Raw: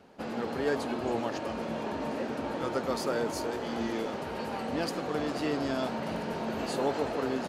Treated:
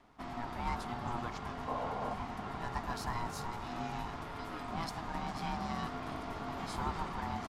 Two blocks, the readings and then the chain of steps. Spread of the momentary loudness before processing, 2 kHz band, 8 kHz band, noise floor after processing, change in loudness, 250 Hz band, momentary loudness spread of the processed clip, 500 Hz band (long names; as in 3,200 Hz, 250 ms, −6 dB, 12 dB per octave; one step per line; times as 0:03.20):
4 LU, −6.0 dB, −7.0 dB, −44 dBFS, −7.0 dB, −9.5 dB, 4 LU, −13.5 dB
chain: single-tap delay 261 ms −23.5 dB
ring modulation 480 Hz
sound drawn into the spectrogram noise, 0:01.67–0:02.14, 420–1,100 Hz −35 dBFS
level −4 dB